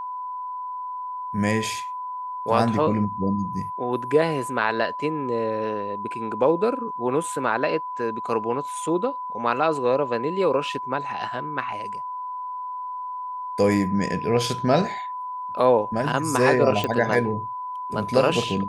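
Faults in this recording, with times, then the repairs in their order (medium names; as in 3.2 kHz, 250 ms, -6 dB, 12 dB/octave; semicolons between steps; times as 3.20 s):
whine 1 kHz -29 dBFS
16.84 s: pop -11 dBFS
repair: de-click; band-stop 1 kHz, Q 30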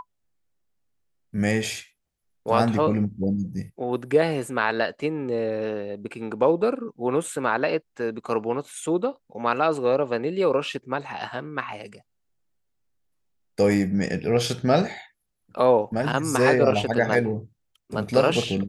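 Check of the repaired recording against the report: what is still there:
nothing left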